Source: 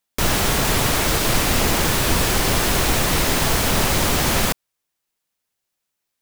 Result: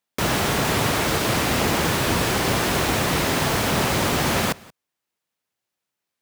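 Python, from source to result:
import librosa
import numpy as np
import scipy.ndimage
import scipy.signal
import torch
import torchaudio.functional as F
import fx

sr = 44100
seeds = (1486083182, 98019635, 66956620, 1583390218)

y = scipy.signal.sosfilt(scipy.signal.butter(2, 88.0, 'highpass', fs=sr, output='sos'), x)
y = fx.high_shelf(y, sr, hz=4300.0, db=-7.0)
y = y + 10.0 ** (-23.5 / 20.0) * np.pad(y, (int(179 * sr / 1000.0), 0))[:len(y)]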